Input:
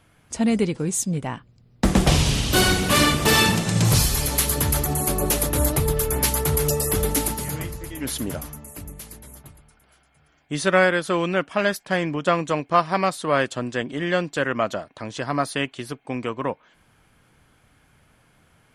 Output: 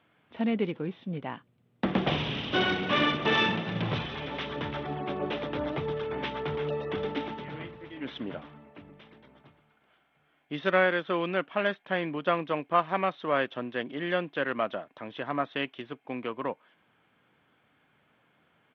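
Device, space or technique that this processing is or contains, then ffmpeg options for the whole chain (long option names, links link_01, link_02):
Bluetooth headset: -af "highpass=190,aresample=8000,aresample=44100,volume=-6dB" -ar 32000 -c:a sbc -b:a 64k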